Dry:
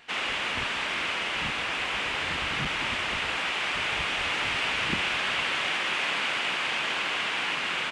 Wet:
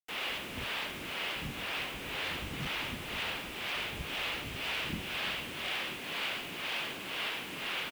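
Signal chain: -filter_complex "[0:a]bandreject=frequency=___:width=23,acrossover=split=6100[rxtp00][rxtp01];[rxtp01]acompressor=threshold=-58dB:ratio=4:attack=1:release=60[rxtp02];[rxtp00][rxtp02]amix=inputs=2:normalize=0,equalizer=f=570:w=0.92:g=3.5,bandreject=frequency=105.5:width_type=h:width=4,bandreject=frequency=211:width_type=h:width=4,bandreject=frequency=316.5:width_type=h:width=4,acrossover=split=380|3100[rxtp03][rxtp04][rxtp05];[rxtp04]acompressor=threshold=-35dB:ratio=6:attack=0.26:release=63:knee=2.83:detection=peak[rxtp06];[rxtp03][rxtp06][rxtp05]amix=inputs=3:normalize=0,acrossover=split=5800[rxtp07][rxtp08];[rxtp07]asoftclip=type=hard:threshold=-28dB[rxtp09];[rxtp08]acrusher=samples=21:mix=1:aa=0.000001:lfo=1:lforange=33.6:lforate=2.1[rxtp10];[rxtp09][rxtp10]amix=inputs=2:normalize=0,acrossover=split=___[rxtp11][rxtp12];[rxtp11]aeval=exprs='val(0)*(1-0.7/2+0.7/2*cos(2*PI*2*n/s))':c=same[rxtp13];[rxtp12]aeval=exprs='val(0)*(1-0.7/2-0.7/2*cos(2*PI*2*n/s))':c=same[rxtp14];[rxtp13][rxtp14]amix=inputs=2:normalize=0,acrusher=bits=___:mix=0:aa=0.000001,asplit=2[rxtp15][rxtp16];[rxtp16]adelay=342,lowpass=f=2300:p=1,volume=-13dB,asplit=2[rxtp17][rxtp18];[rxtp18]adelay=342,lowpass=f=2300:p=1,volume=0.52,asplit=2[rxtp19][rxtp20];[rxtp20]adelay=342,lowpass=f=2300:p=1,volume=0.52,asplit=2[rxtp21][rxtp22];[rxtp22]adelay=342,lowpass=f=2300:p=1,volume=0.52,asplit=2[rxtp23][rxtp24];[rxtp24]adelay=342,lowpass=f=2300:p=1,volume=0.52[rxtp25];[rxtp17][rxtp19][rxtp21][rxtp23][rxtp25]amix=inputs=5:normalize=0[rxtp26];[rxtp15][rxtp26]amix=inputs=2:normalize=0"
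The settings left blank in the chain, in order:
6900, 410, 7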